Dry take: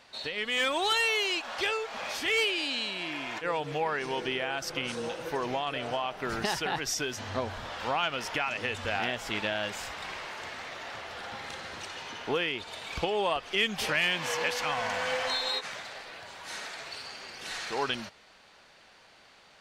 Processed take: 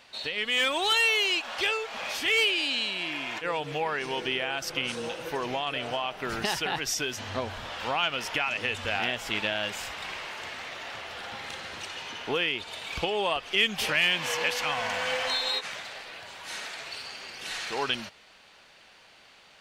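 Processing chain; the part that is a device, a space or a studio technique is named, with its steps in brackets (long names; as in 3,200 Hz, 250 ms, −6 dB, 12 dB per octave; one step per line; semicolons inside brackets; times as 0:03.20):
presence and air boost (parametric band 2,800 Hz +4.5 dB 0.81 octaves; high-shelf EQ 10,000 Hz +6 dB)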